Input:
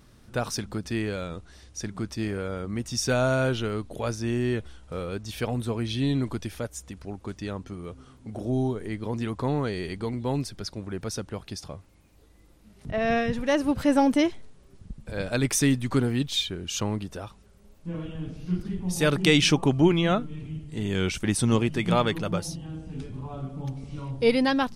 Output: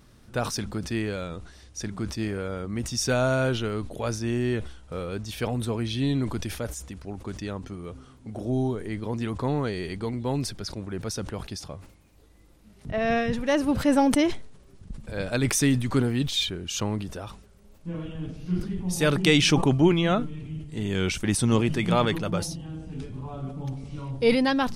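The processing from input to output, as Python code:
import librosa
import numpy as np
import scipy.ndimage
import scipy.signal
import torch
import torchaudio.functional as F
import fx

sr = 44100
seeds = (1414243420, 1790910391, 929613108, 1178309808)

y = fx.sustainer(x, sr, db_per_s=88.0)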